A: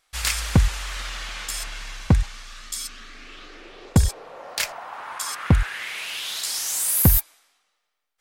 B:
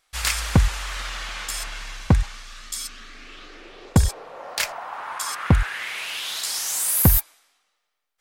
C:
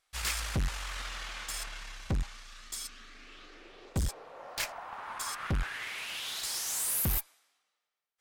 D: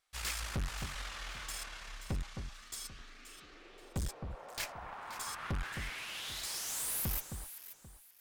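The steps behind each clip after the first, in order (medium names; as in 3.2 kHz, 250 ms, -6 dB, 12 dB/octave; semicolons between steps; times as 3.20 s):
dynamic bell 1 kHz, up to +3 dB, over -41 dBFS, Q 0.7
valve stage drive 24 dB, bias 0.35; upward expansion 1.5:1, over -36 dBFS; trim -2 dB
single-diode clipper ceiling -34 dBFS; echo whose repeats swap between lows and highs 264 ms, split 1.6 kHz, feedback 51%, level -6.5 dB; trim -3.5 dB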